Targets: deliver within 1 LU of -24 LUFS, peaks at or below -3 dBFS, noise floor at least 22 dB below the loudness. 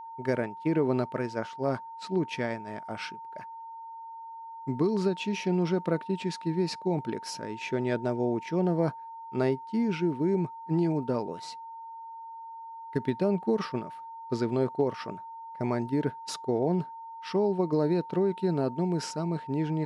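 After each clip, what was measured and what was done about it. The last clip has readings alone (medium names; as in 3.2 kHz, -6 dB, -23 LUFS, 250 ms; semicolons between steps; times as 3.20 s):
steady tone 910 Hz; tone level -40 dBFS; loudness -30.0 LUFS; peak level -14.5 dBFS; loudness target -24.0 LUFS
-> band-stop 910 Hz, Q 30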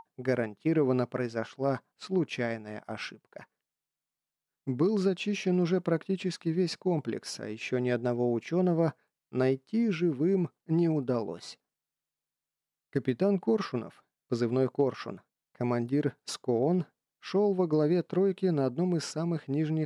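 steady tone not found; loudness -30.0 LUFS; peak level -15.0 dBFS; loudness target -24.0 LUFS
-> trim +6 dB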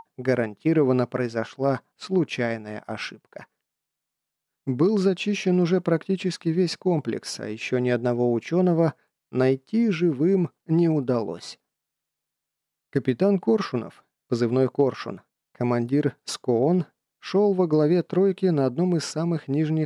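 loudness -24.0 LUFS; peak level -9.0 dBFS; noise floor -85 dBFS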